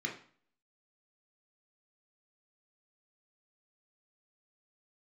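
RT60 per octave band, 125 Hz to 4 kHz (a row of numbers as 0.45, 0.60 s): 0.50, 0.50, 0.45, 0.50, 0.45, 0.45 s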